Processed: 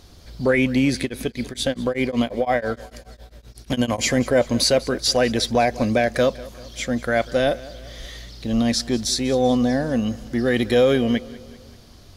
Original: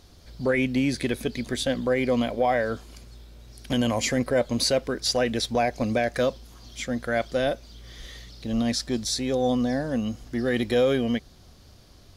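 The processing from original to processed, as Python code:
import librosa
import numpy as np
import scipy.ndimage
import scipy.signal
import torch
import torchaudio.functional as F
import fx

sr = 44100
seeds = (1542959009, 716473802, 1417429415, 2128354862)

y = fx.echo_feedback(x, sr, ms=194, feedback_pct=52, wet_db=-19.5)
y = fx.tremolo_abs(y, sr, hz=fx.line((1.04, 4.1), (4.03, 10.0)), at=(1.04, 4.03), fade=0.02)
y = y * librosa.db_to_amplitude(5.0)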